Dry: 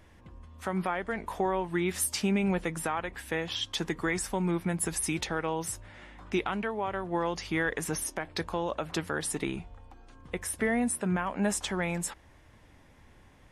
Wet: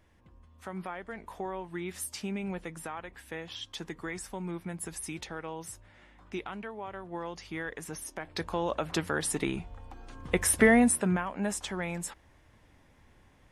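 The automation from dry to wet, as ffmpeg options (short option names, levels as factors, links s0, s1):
-af "volume=2.82,afade=t=in:st=8.02:d=0.69:silence=0.334965,afade=t=in:st=9.61:d=0.93:silence=0.421697,afade=t=out:st=10.54:d=0.74:silence=0.237137"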